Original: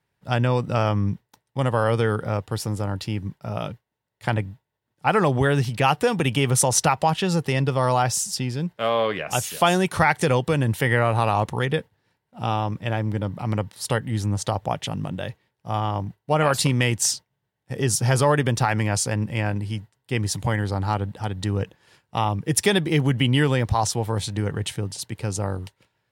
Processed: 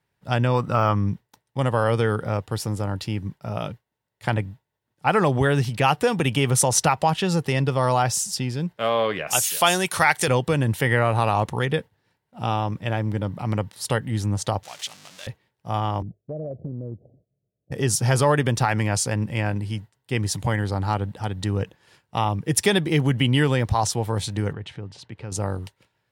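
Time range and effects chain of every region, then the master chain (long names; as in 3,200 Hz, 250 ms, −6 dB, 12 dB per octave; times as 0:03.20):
0:00.54–0:00.95: de-essing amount 90% + parametric band 1,200 Hz +9.5 dB 0.76 octaves
0:09.27–0:10.28: spectral tilt +2.5 dB per octave + one half of a high-frequency compander encoder only
0:14.63–0:15.27: converter with a step at zero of −26.5 dBFS + resonant band-pass 5,700 Hz, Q 0.98
0:16.02–0:17.72: Butterworth low-pass 680 Hz 96 dB per octave + downward compressor 4 to 1, threshold −30 dBFS
0:24.53–0:25.32: low-pass filter 3,200 Hz + downward compressor 1.5 to 1, threshold −42 dBFS
whole clip: no processing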